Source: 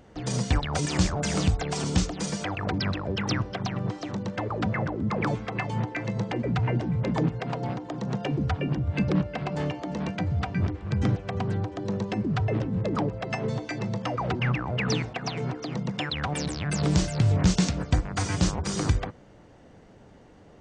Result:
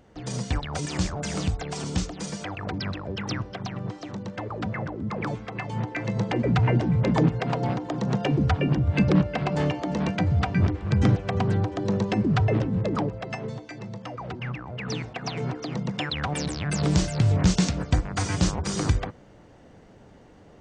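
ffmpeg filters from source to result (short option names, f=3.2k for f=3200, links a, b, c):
-af "volume=12.5dB,afade=t=in:st=5.61:d=0.85:silence=0.421697,afade=t=out:st=12.38:d=1.24:silence=0.266073,afade=t=in:st=14.8:d=0.61:silence=0.398107"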